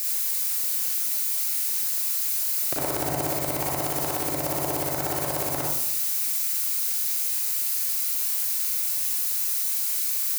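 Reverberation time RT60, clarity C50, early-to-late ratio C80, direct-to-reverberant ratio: 0.75 s, −0.5 dB, 4.5 dB, −4.0 dB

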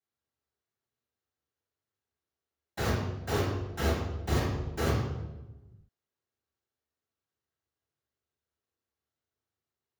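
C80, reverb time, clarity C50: 4.0 dB, 1.1 s, 1.0 dB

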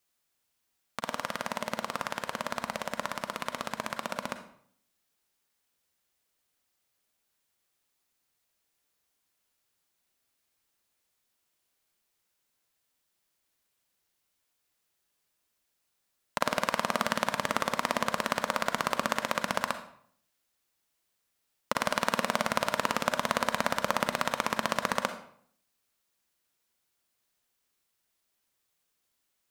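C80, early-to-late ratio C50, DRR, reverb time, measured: 13.0 dB, 10.0 dB, 8.5 dB, 0.60 s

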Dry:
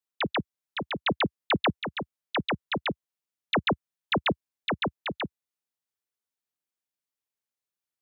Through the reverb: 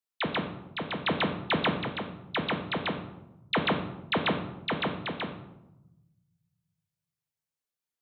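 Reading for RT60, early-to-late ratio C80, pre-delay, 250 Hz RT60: 0.95 s, 11.0 dB, 4 ms, 1.7 s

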